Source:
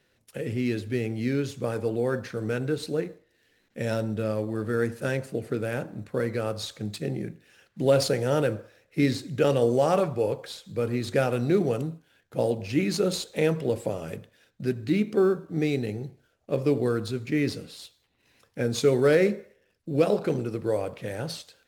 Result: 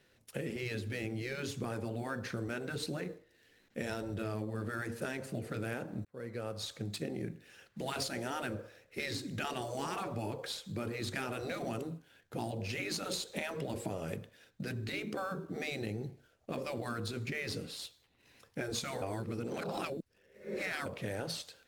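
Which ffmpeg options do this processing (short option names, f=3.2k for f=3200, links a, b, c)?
-filter_complex "[0:a]asplit=4[a][b][c][d];[a]atrim=end=6.05,asetpts=PTS-STARTPTS,afade=t=out:st=6.046:d=0.004:c=hsin[e];[b]atrim=start=6.05:end=19.022,asetpts=PTS-STARTPTS,afade=t=in:d=1.11[f];[c]atrim=start=19.018:end=20.862,asetpts=PTS-STARTPTS,areverse[g];[d]atrim=start=20.858[h];[e][f]concat=n=2:v=0:a=1[i];[i][g]acrossfade=d=0.004:c1=hsin:c2=hsin[j];[j][h]acrossfade=d=0.004:c1=hsin:c2=hsin,afftfilt=real='re*lt(hypot(re,im),0.224)':imag='im*lt(hypot(re,im),0.224)':win_size=1024:overlap=0.75,acompressor=threshold=-34dB:ratio=6"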